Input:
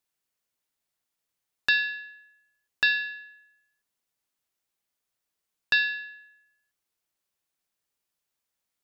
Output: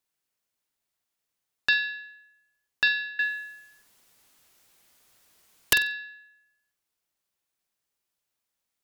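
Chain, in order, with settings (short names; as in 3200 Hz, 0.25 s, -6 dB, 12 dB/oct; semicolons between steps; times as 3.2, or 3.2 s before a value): 3.19–5.73 sine folder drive 17 dB, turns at -10 dBFS; flutter echo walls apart 8 m, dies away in 0.23 s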